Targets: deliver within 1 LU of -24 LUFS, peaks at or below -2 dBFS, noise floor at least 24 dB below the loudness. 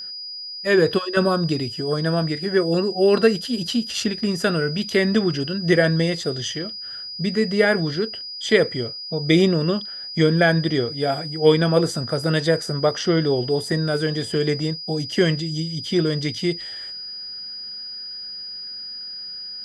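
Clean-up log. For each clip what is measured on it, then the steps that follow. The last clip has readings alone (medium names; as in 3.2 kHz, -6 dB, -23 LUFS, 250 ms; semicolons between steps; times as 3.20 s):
steady tone 4.9 kHz; tone level -31 dBFS; loudness -22.0 LUFS; peak level -3.5 dBFS; loudness target -24.0 LUFS
-> band-stop 4.9 kHz, Q 30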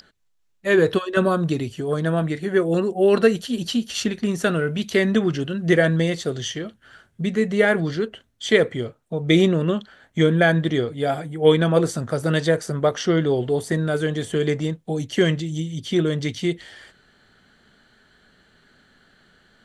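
steady tone not found; loudness -21.5 LUFS; peak level -4.0 dBFS; loudness target -24.0 LUFS
-> trim -2.5 dB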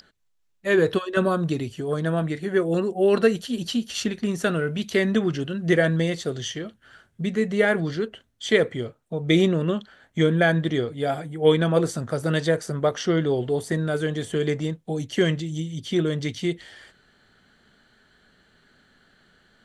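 loudness -24.0 LUFS; peak level -6.5 dBFS; noise floor -67 dBFS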